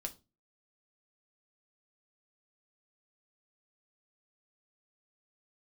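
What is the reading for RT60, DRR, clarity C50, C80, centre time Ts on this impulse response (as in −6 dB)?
0.30 s, 4.0 dB, 17.5 dB, 25.0 dB, 7 ms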